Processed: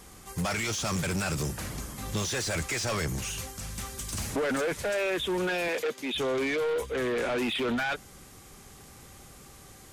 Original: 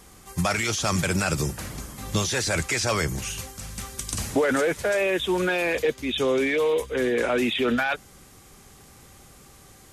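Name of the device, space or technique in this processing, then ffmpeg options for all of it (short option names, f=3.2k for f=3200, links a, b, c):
saturation between pre-emphasis and de-emphasis: -filter_complex "[0:a]highshelf=f=7.3k:g=10,asoftclip=type=tanh:threshold=-25.5dB,highshelf=f=7.3k:g=-10,asettb=1/sr,asplit=3[a][b][c];[a]atrim=end=5.684[d];[b]atrim=start=5.68:end=6.15,asetpts=PTS-STARTPTS,afade=t=in:d=0.004:c=qsin,afade=t=out:st=0.466:d=0.004:c=qsin,highpass=250[e];[c]atrim=start=6.146[f];[d][e]acrossfade=d=0.004:c1=hsin:c2=qsin[g];[g][f]acrossfade=d=0.004:c1=qsin:c2=hsin"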